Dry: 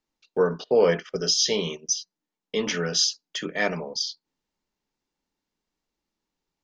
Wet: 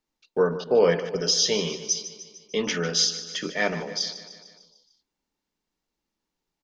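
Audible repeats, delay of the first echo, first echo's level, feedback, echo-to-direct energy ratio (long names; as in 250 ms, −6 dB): 5, 150 ms, −13.5 dB, 58%, −11.5 dB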